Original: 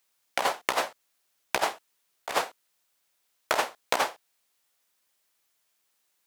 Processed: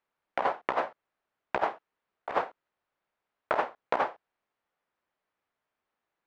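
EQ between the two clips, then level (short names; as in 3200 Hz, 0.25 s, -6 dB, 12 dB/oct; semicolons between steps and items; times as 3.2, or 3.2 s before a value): LPF 1500 Hz 12 dB/oct; 0.0 dB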